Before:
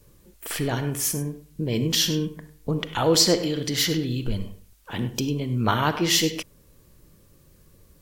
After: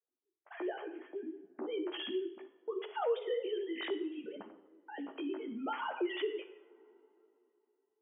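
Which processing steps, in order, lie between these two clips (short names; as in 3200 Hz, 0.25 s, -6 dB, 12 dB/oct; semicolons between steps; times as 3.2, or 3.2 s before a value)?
sine-wave speech; air absorption 72 m; gate -44 dBFS, range -30 dB; tilt shelf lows +3.5 dB; two-slope reverb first 0.69 s, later 3.2 s, from -25 dB, DRR 8.5 dB; chorus voices 2, 0.66 Hz, delay 14 ms, depth 4.5 ms; low-pass opened by the level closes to 1100 Hz, open at -20.5 dBFS; compressor 1.5:1, threshold -50 dBFS, peak gain reduction 12.5 dB; HPF 360 Hz 12 dB/oct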